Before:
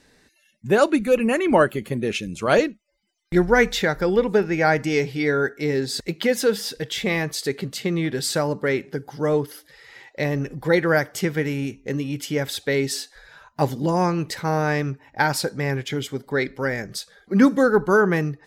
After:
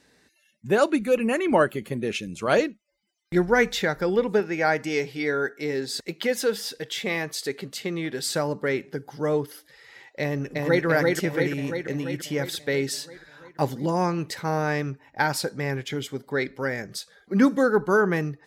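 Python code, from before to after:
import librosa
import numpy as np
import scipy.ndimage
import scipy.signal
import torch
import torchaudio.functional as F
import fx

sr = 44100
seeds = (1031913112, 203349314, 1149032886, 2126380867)

y = fx.low_shelf(x, sr, hz=140.0, db=-11.5, at=(4.4, 8.26))
y = fx.echo_throw(y, sr, start_s=10.21, length_s=0.64, ms=340, feedback_pct=65, wet_db=-1.5)
y = fx.highpass(y, sr, hz=86.0, slope=6)
y = y * librosa.db_to_amplitude(-3.0)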